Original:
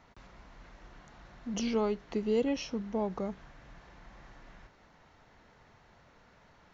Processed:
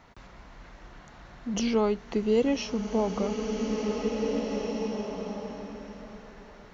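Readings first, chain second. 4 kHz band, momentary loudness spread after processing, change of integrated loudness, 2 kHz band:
+7.0 dB, 18 LU, +4.0 dB, +6.5 dB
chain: swelling reverb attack 2160 ms, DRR 3 dB; trim +5 dB

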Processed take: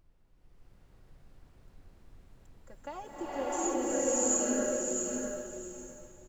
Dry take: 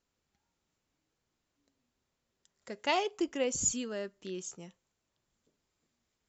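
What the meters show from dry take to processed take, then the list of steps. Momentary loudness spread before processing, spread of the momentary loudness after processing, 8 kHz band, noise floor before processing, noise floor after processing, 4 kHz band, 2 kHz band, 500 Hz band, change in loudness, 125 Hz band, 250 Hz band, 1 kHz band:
15 LU, 18 LU, no reading, -84 dBFS, -63 dBFS, -10.0 dB, -3.5 dB, +4.0 dB, +1.5 dB, -1.0 dB, +4.5 dB, 0.0 dB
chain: high-pass 290 Hz 12 dB/octave; high-order bell 3.4 kHz -14 dB; comb 3.6 ms, depth 73%; compression, threshold -30 dBFS, peak gain reduction 7 dB; bit crusher 11-bit; tremolo saw up 0.75 Hz, depth 65%; added noise brown -64 dBFS; feedback delay 650 ms, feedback 17%, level -5.5 dB; swelling reverb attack 710 ms, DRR -10 dB; trim -1.5 dB

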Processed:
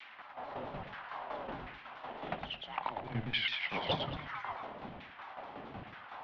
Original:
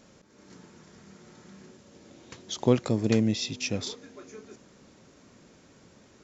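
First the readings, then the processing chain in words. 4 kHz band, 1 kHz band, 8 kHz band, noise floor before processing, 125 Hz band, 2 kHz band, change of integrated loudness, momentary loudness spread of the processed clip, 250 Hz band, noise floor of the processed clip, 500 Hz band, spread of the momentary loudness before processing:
-1.0 dB, +6.0 dB, no reading, -57 dBFS, -11.5 dB, +3.5 dB, -12.5 dB, 14 LU, -16.5 dB, -53 dBFS, -11.0 dB, 22 LU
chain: modulation noise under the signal 19 dB; pre-echo 53 ms -14.5 dB; reverse; compression 20:1, threshold -36 dBFS, peak gain reduction 22.5 dB; reverse; peaking EQ 1.1 kHz +9.5 dB 0.64 oct; LFO high-pass saw down 1.2 Hz 390–2500 Hz; tremolo saw down 5.4 Hz, depth 75%; on a send: thinning echo 109 ms, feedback 36%, high-pass 570 Hz, level -4.5 dB; on the sum: mistuned SSB -320 Hz 370–3600 Hz; vibrato with a chosen wave saw down 4.6 Hz, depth 160 cents; trim +11 dB

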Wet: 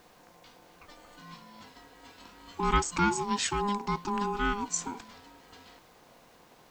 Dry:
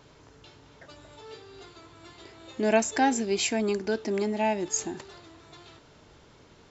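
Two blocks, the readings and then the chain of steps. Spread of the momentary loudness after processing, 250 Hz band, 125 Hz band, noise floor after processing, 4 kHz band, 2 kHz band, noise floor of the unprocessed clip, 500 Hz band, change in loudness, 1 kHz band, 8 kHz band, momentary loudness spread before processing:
21 LU, -4.5 dB, +4.0 dB, -59 dBFS, -2.0 dB, -1.5 dB, -56 dBFS, -9.0 dB, -3.0 dB, +0.5 dB, no reading, 21 LU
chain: ring modulator 610 Hz; added noise white -69 dBFS

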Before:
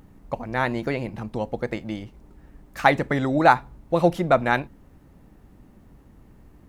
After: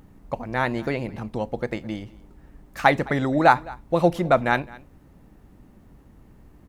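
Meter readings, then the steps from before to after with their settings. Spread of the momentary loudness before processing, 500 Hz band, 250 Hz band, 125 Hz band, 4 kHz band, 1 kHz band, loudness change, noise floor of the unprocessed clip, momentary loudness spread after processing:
16 LU, 0.0 dB, 0.0 dB, 0.0 dB, 0.0 dB, 0.0 dB, 0.0 dB, -52 dBFS, 16 LU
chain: delay 212 ms -22 dB

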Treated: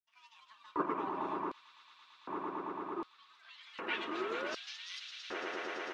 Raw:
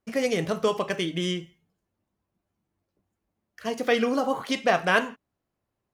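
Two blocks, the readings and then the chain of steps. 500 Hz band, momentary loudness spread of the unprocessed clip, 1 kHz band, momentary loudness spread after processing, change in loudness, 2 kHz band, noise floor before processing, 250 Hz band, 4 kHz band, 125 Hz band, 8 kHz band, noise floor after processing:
-15.5 dB, 11 LU, -8.5 dB, 21 LU, -13.5 dB, -13.0 dB, -83 dBFS, -13.0 dB, -11.5 dB, -22.0 dB, -16.0 dB, -65 dBFS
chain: treble shelf 3.2 kHz -10.5 dB; band-stop 3.8 kHz, Q 5.7; comb 6.3 ms, depth 57%; ever faster or slower copies 218 ms, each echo +3 st, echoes 3, each echo -6 dB; band-pass sweep 760 Hz -> 4.9 kHz, 3.25–4.31 s; painted sound rise, 4.07–4.98 s, 730–1600 Hz -39 dBFS; ring modulator 450 Hz; echo with a slow build-up 112 ms, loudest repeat 8, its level -10 dB; LFO high-pass square 0.66 Hz 370–4000 Hz; trim -2.5 dB

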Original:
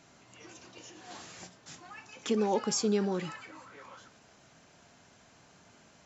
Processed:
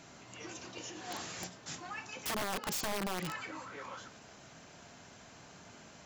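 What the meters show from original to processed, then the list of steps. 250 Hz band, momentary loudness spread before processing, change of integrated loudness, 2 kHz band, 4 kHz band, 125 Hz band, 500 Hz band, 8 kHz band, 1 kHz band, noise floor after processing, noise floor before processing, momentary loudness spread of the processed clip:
-10.0 dB, 21 LU, -8.0 dB, +4.5 dB, -0.5 dB, -5.0 dB, -10.0 dB, no reading, -1.5 dB, -56 dBFS, -61 dBFS, 19 LU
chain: compression 12:1, threshold -36 dBFS, peak gain reduction 13 dB; integer overflow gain 35 dB; trim +5 dB

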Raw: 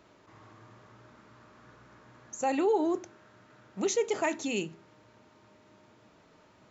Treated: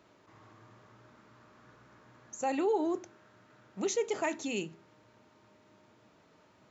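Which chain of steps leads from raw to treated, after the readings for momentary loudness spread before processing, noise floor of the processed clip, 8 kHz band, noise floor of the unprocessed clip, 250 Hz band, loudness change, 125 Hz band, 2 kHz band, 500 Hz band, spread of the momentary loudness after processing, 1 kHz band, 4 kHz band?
14 LU, -64 dBFS, no reading, -61 dBFS, -3.0 dB, -3.0 dB, -3.0 dB, -3.0 dB, -3.0 dB, 14 LU, -3.0 dB, -3.0 dB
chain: high-pass 63 Hz; trim -3 dB

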